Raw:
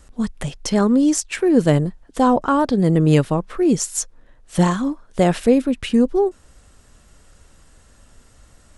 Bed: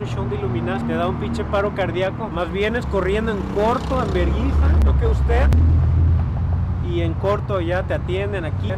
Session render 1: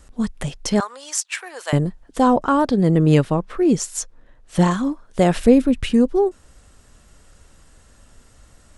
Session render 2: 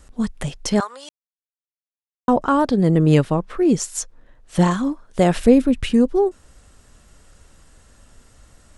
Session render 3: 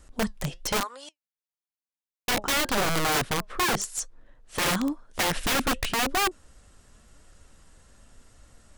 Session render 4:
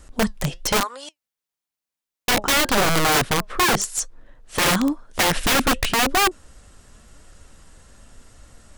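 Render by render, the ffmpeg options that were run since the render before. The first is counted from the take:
ffmpeg -i in.wav -filter_complex "[0:a]asettb=1/sr,asplit=3[link_01][link_02][link_03];[link_01]atrim=end=0.804[link_04];[link_02]atrim=start=0.8:end=1.73,asetpts=PTS-STARTPTS,afade=type=in:duration=0.004:curve=qsin,afade=type=out:start_time=0.926:duration=0.004:curve=qsin,highpass=frequency=810:width=0.5412,highpass=frequency=810:width=1.3066[link_05];[link_03]atrim=start=1.726[link_06];[link_04][link_05]acrossfade=duration=0.004:curve1=hsin:curve2=qsin[link_07];[link_07][link_06]acrossfade=duration=0.004:curve1=qsin:curve2=hsin,asettb=1/sr,asplit=3[link_08][link_09][link_10];[link_08]atrim=end=2.754[link_11];[link_09]atrim=start=2.75:end=4.71,asetpts=PTS-STARTPTS,afade=type=in:duration=0.004:curve=qsin,afade=type=out:start_time=1.956:duration=0.004:curve=qsin,highshelf=frequency=7500:gain=-6.5[link_12];[link_10]atrim=start=4.706[link_13];[link_11][link_12]acrossfade=duration=0.004:curve1=hsin:curve2=qsin[link_14];[link_14][link_13]acrossfade=duration=0.004:curve1=qsin:curve2=hsin,asettb=1/sr,asplit=3[link_15][link_16][link_17];[link_15]atrim=end=5.364[link_18];[link_16]atrim=start=5.36:end=5.93,asetpts=PTS-STARTPTS,afade=type=in:duration=0.004:curve=qsin,afade=type=out:start_time=0.566:duration=0.004:curve=qsin,lowshelf=frequency=160:gain=10[link_19];[link_17]atrim=start=5.926[link_20];[link_18][link_19]acrossfade=duration=0.004:curve1=hsin:curve2=qsin[link_21];[link_21][link_20]acrossfade=duration=0.004:curve1=qsin:curve2=hsin" out.wav
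ffmpeg -i in.wav -filter_complex "[0:a]asplit=3[link_01][link_02][link_03];[link_01]atrim=end=1.09,asetpts=PTS-STARTPTS,afade=type=out:start_time=1.086:duration=0.004:curve=hsin[link_04];[link_02]atrim=start=1.09:end=2.28,asetpts=PTS-STARTPTS,volume=0[link_05];[link_03]atrim=start=2.28,asetpts=PTS-STARTPTS,afade=type=in:duration=0.004:curve=hsin[link_06];[link_04][link_05][link_06]concat=n=3:v=0:a=1" out.wav
ffmpeg -i in.wav -af "flanger=delay=2.7:depth=3.3:regen=82:speed=0.96:shape=triangular,aeval=exprs='(mod(9.44*val(0)+1,2)-1)/9.44':channel_layout=same" out.wav
ffmpeg -i in.wav -af "volume=6.5dB" out.wav

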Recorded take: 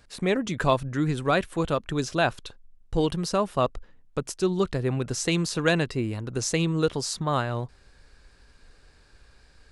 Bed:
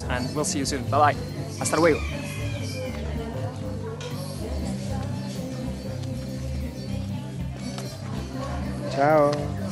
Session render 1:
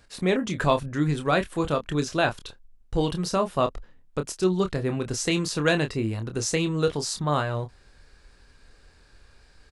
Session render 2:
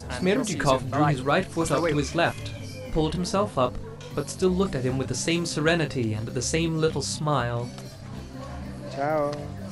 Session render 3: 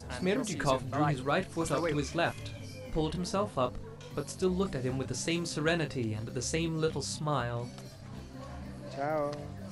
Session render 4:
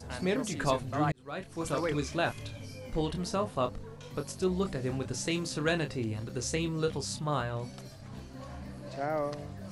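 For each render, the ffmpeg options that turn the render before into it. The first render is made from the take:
ffmpeg -i in.wav -filter_complex "[0:a]asplit=2[link_01][link_02];[link_02]adelay=27,volume=-8dB[link_03];[link_01][link_03]amix=inputs=2:normalize=0" out.wav
ffmpeg -i in.wav -i bed.wav -filter_complex "[1:a]volume=-6.5dB[link_01];[0:a][link_01]amix=inputs=2:normalize=0" out.wav
ffmpeg -i in.wav -af "volume=-7dB" out.wav
ffmpeg -i in.wav -filter_complex "[0:a]asplit=2[link_01][link_02];[link_01]atrim=end=1.12,asetpts=PTS-STARTPTS,afade=type=out:start_time=1.116:duration=0.004:curve=hsin[link_03];[link_02]atrim=start=1.12,asetpts=PTS-STARTPTS,afade=type=in:duration=0.69[link_04];[link_03][link_04]concat=n=2:v=0:a=1" out.wav

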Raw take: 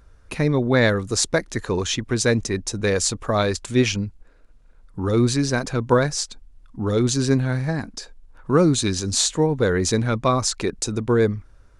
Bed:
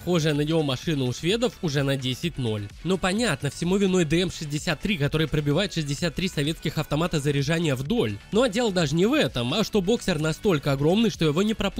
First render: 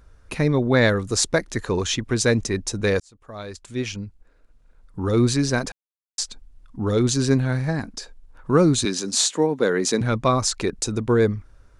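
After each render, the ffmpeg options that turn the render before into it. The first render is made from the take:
ffmpeg -i in.wav -filter_complex "[0:a]asettb=1/sr,asplit=3[link_01][link_02][link_03];[link_01]atrim=end=8.854[link_04];[link_02]atrim=start=8.85:end=10.01,asetpts=PTS-STARTPTS,afade=type=in:duration=0.004:curve=qsin,afade=type=out:start_time=1.156:duration=0.004:curve=qsin,highpass=frequency=190:width=0.5412,highpass=frequency=190:width=1.3066[link_05];[link_03]atrim=start=10.006[link_06];[link_04][link_05]acrossfade=duration=0.004:curve1=hsin:curve2=qsin[link_07];[link_07][link_06]acrossfade=duration=0.004:curve1=qsin:curve2=hsin,asplit=4[link_08][link_09][link_10][link_11];[link_08]atrim=end=3,asetpts=PTS-STARTPTS,afade=type=out:start_time=2.996:duration=0.004:curve=hsin[link_12];[link_09]atrim=start=3:end=5.72,asetpts=PTS-STARTPTS,afade=type=in:duration=2.22,afade=type=out:start_time=2.716:duration=0.004:curve=hsin[link_13];[link_10]atrim=start=5.72:end=6.18,asetpts=PTS-STARTPTS,volume=0[link_14];[link_11]atrim=start=6.18,asetpts=PTS-STARTPTS,afade=type=in:duration=0.004:curve=hsin[link_15];[link_12][link_13][link_14][link_15]concat=n=4:v=0:a=1" out.wav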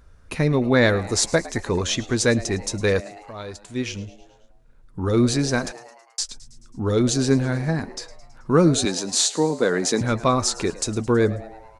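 ffmpeg -i in.wav -filter_complex "[0:a]asplit=2[link_01][link_02];[link_02]adelay=12,volume=-12.5dB[link_03];[link_01][link_03]amix=inputs=2:normalize=0,asplit=6[link_04][link_05][link_06][link_07][link_08][link_09];[link_05]adelay=108,afreqshift=110,volume=-18.5dB[link_10];[link_06]adelay=216,afreqshift=220,volume=-23.1dB[link_11];[link_07]adelay=324,afreqshift=330,volume=-27.7dB[link_12];[link_08]adelay=432,afreqshift=440,volume=-32.2dB[link_13];[link_09]adelay=540,afreqshift=550,volume=-36.8dB[link_14];[link_04][link_10][link_11][link_12][link_13][link_14]amix=inputs=6:normalize=0" out.wav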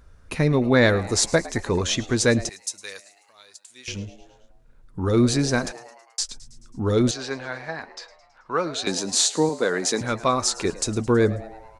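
ffmpeg -i in.wav -filter_complex "[0:a]asettb=1/sr,asplit=3[link_01][link_02][link_03];[link_01]atrim=end=2.494[link_04];[link_02]atrim=start=2.49:end=3.88,asetpts=PTS-STARTPTS,afade=type=in:duration=0.004:curve=qsin,afade=type=out:start_time=1.386:duration=0.004:curve=qsin,aderivative[link_05];[link_03]atrim=start=3.876[link_06];[link_04][link_05]acrossfade=duration=0.004:curve1=hsin:curve2=qsin[link_07];[link_07][link_06]acrossfade=duration=0.004:curve1=qsin:curve2=hsin,asettb=1/sr,asplit=3[link_08][link_09][link_10];[link_08]atrim=end=7.114[link_11];[link_09]atrim=start=7.11:end=8.87,asetpts=PTS-STARTPTS,afade=type=in:duration=0.004:curve=qsin,afade=type=out:start_time=1.756:duration=0.004:curve=qsin,acrossover=split=540 5200:gain=0.1 1 0.112[link_12][link_13][link_14];[link_12][link_13][link_14]amix=inputs=3:normalize=0[link_15];[link_10]atrim=start=8.866[link_16];[link_11][link_15]acrossfade=duration=0.004:curve1=hsin:curve2=qsin[link_17];[link_17][link_16]acrossfade=duration=0.004:curve1=qsin:curve2=hsin,asettb=1/sr,asplit=3[link_18][link_19][link_20];[link_18]atrim=end=9.494[link_21];[link_19]atrim=start=9.49:end=10.65,asetpts=PTS-STARTPTS,afade=type=in:duration=0.004:curve=qsin,afade=type=out:start_time=1.156:duration=0.004:curve=qsin,lowshelf=frequency=300:gain=-8.5[link_22];[link_20]atrim=start=10.646[link_23];[link_21][link_22]acrossfade=duration=0.004:curve1=hsin:curve2=qsin[link_24];[link_24][link_23]acrossfade=duration=0.004:curve1=qsin:curve2=hsin" out.wav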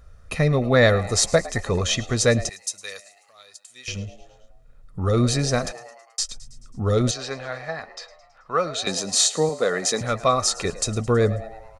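ffmpeg -i in.wav -af "aecho=1:1:1.6:0.55" out.wav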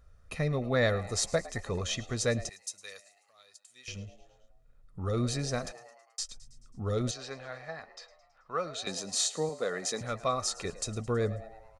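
ffmpeg -i in.wav -af "volume=-10.5dB" out.wav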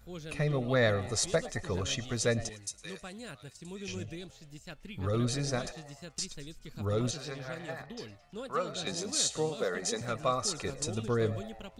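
ffmpeg -i in.wav -i bed.wav -filter_complex "[1:a]volume=-21dB[link_01];[0:a][link_01]amix=inputs=2:normalize=0" out.wav

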